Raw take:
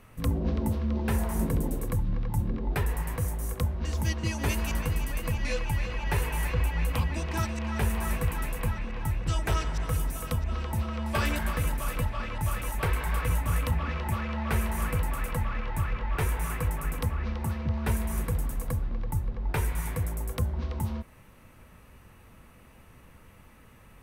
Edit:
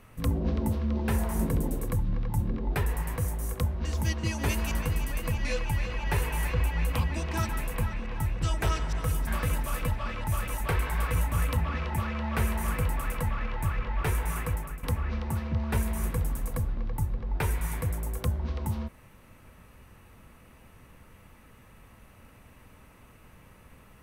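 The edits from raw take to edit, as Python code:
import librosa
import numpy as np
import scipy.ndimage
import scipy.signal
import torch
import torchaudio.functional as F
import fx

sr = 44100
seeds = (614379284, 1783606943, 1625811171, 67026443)

y = fx.edit(x, sr, fx.cut(start_s=7.49, length_s=0.85),
    fx.cut(start_s=10.12, length_s=1.29),
    fx.fade_out_to(start_s=16.45, length_s=0.52, curve='qsin', floor_db=-13.5), tone=tone)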